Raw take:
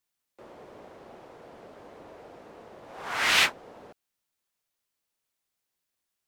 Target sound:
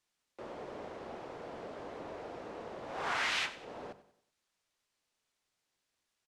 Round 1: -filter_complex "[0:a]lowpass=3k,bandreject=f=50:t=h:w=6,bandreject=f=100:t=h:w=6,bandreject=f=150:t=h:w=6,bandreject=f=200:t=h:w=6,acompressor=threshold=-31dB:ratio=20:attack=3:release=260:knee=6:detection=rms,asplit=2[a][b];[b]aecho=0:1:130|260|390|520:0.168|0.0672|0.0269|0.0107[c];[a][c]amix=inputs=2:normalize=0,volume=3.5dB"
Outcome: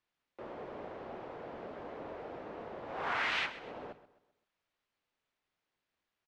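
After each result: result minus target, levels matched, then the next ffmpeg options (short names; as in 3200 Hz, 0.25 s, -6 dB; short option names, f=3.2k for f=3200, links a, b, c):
8000 Hz band -11.0 dB; echo 36 ms late
-filter_complex "[0:a]lowpass=7.4k,bandreject=f=50:t=h:w=6,bandreject=f=100:t=h:w=6,bandreject=f=150:t=h:w=6,bandreject=f=200:t=h:w=6,acompressor=threshold=-31dB:ratio=20:attack=3:release=260:knee=6:detection=rms,asplit=2[a][b];[b]aecho=0:1:130|260|390|520:0.168|0.0672|0.0269|0.0107[c];[a][c]amix=inputs=2:normalize=0,volume=3.5dB"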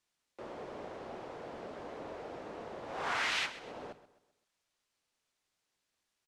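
echo 36 ms late
-filter_complex "[0:a]lowpass=7.4k,bandreject=f=50:t=h:w=6,bandreject=f=100:t=h:w=6,bandreject=f=150:t=h:w=6,bandreject=f=200:t=h:w=6,acompressor=threshold=-31dB:ratio=20:attack=3:release=260:knee=6:detection=rms,asplit=2[a][b];[b]aecho=0:1:94|188|282|376:0.168|0.0672|0.0269|0.0107[c];[a][c]amix=inputs=2:normalize=0,volume=3.5dB"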